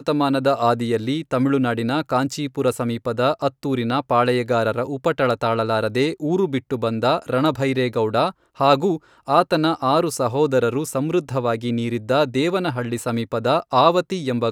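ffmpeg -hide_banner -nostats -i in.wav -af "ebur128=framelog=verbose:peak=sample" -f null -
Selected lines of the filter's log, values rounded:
Integrated loudness:
  I:         -20.7 LUFS
  Threshold: -30.7 LUFS
Loudness range:
  LRA:         1.7 LU
  Threshold: -40.8 LUFS
  LRA low:   -21.5 LUFS
  LRA high:  -19.9 LUFS
Sample peak:
  Peak:       -1.3 dBFS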